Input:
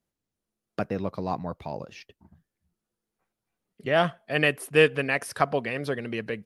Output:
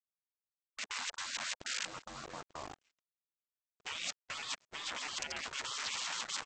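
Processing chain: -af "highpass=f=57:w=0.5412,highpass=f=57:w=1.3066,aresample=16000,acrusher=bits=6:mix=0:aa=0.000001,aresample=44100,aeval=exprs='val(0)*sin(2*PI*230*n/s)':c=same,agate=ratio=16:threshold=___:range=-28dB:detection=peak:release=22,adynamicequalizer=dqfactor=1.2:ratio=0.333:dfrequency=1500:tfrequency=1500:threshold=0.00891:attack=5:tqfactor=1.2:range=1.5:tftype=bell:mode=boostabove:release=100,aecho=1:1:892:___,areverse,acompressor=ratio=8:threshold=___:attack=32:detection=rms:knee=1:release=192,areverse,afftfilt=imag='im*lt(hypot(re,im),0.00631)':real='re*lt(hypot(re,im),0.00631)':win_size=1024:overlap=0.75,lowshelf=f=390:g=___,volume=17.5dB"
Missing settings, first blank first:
-47dB, 0.1, -38dB, -7.5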